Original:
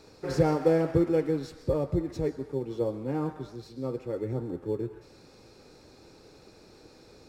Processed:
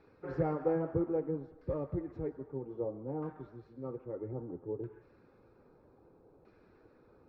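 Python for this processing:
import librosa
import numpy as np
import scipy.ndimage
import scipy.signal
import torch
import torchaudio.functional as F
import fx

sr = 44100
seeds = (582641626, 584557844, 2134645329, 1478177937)

y = fx.spec_quant(x, sr, step_db=15)
y = fx.filter_lfo_lowpass(y, sr, shape='saw_down', hz=0.62, low_hz=790.0, high_hz=1900.0, q=1.3)
y = y * librosa.db_to_amplitude(-8.5)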